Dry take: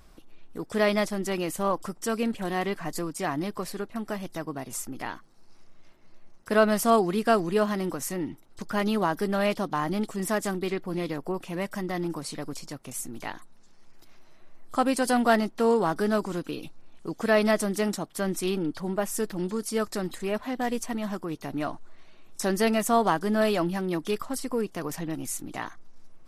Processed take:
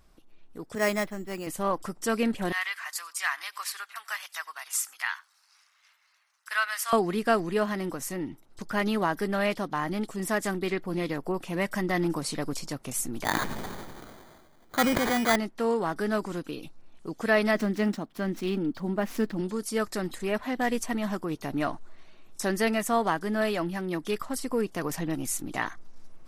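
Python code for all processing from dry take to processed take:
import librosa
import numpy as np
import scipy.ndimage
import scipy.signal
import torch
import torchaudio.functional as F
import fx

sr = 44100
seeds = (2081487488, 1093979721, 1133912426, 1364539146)

y = fx.chain(x, sr, fx.resample_bad(factor=6, down='filtered', up='hold'),
    fx.band_widen(depth_pct=70), at=(0.75, 1.47))
y = fx.chain(y, sr, fx.highpass(hz=1200.0, slope=24),
    fx.echo_single(ms=93, db=-23.5), at=(2.52, 6.93))
y = fx.chain(y, sr, fx.highpass(hz=49.0, slope=6),
    fx.sample_hold(seeds[0], rate_hz=2700.0, jitter_pct=0),
    fx.sustainer(db_per_s=22.0), at=(13.24, 15.36))
y = fx.chain(y, sr, fx.median_filter(points=5),
    fx.peak_eq(hz=240.0, db=9.0, octaves=0.6), at=(17.55, 19.41))
y = fx.dynamic_eq(y, sr, hz=1900.0, q=1.9, threshold_db=-44.0, ratio=4.0, max_db=5)
y = fx.rider(y, sr, range_db=10, speed_s=2.0)
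y = y * librosa.db_to_amplitude(-3.0)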